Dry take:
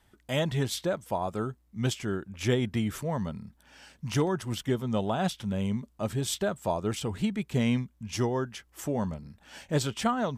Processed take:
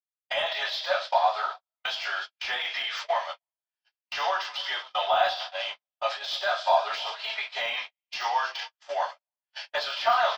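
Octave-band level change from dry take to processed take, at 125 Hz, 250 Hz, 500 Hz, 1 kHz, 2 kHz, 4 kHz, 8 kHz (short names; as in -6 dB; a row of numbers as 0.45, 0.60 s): under -35 dB, under -30 dB, +0.5 dB, +9.5 dB, +9.5 dB, +8.5 dB, -9.5 dB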